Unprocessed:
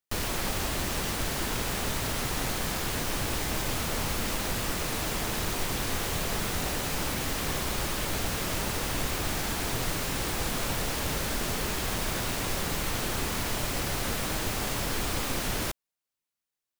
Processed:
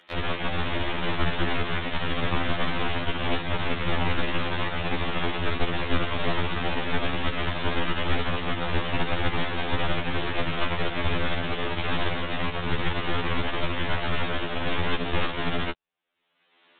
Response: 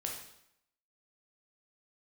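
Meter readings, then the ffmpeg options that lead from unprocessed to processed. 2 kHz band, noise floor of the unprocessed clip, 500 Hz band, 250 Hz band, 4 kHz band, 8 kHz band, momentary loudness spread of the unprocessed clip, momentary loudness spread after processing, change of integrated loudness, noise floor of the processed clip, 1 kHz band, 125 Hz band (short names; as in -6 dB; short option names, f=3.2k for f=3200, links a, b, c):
+5.0 dB, under -85 dBFS, +4.0 dB, +4.0 dB, +1.5 dB, under -40 dB, 0 LU, 2 LU, +1.5 dB, -63 dBFS, +4.5 dB, +4.0 dB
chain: -filter_complex "[0:a]aeval=exprs='0.168*(cos(1*acos(clip(val(0)/0.168,-1,1)))-cos(1*PI/2))+0.075*(cos(4*acos(clip(val(0)/0.168,-1,1)))-cos(4*PI/2))':c=same,aresample=8000,aresample=44100,acrossover=split=170[a][b];[b]acompressor=mode=upward:threshold=-34dB:ratio=2.5[c];[a][c]amix=inputs=2:normalize=0,afftfilt=real='re*2*eq(mod(b,4),0)':imag='im*2*eq(mod(b,4),0)':win_size=2048:overlap=0.75,volume=4.5dB"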